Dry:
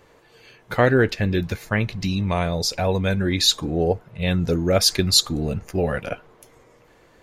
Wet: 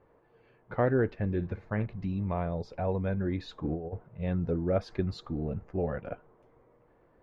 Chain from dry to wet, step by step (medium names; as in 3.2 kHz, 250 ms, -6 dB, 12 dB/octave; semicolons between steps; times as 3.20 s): low-pass 1.2 kHz 12 dB/octave; 1.29–1.86 s: flutter echo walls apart 9.7 m, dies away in 0.23 s; 3.64–4.07 s: compressor with a negative ratio -24 dBFS, ratio -0.5; trim -8.5 dB